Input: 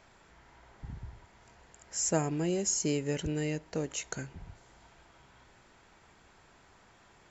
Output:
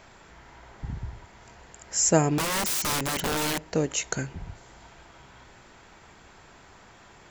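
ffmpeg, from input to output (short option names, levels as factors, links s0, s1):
-filter_complex "[0:a]asettb=1/sr,asplit=3[s0][s1][s2];[s0]atrim=end=2.384[s3];[s1]atrim=start=2.38:end=3.68,asetpts=PTS-STARTPTS,afade=t=in:d=0.004:c=qsin,afade=t=out:st=1.296:d=0.004:c=qsin,aeval=exprs='(mod(35.5*val(0)+1,2)-1)/35.5':c=same[s4];[s2]atrim=start=3.676[s5];[s3][s4]acrossfade=d=0.004:c1=hsin:c2=qsin[s6];[s6][s5]acrossfade=d=0.004:c1=qsin:c2=hsin,volume=2.66"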